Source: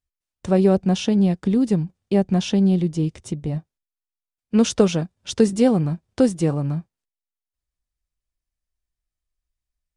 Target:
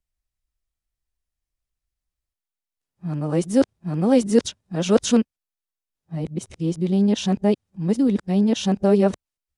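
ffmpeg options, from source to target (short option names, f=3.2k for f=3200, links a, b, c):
-filter_complex "[0:a]areverse,acrossover=split=140|1200|3400[a][b][c][d];[a]alimiter=level_in=12dB:limit=-24dB:level=0:latency=1,volume=-12dB[e];[e][b][c][d]amix=inputs=4:normalize=0,asetrate=45938,aresample=44100"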